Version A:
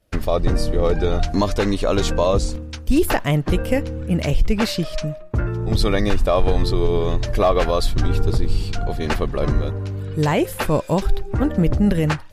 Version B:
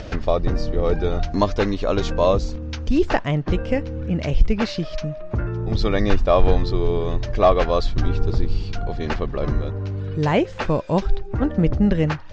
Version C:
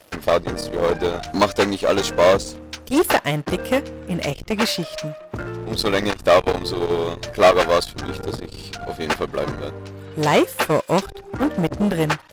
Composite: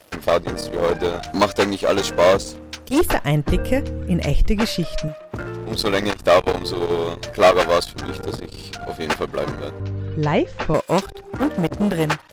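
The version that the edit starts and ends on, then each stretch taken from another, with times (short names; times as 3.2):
C
3.01–5.08 from A
9.8–10.74 from B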